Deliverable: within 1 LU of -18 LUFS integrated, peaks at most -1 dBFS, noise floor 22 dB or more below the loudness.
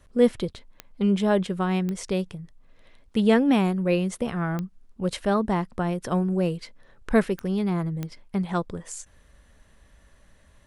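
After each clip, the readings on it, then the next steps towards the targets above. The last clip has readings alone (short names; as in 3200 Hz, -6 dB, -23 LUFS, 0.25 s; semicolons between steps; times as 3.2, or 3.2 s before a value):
clicks 5; loudness -25.5 LUFS; peak -7.5 dBFS; loudness target -18.0 LUFS
-> de-click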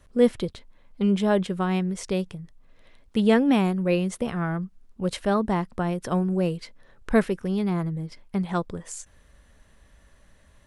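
clicks 0; loudness -25.5 LUFS; peak -7.5 dBFS; loudness target -18.0 LUFS
-> gain +7.5 dB; limiter -1 dBFS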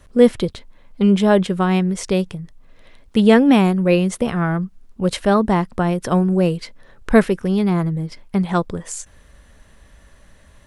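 loudness -18.0 LUFS; peak -1.0 dBFS; noise floor -50 dBFS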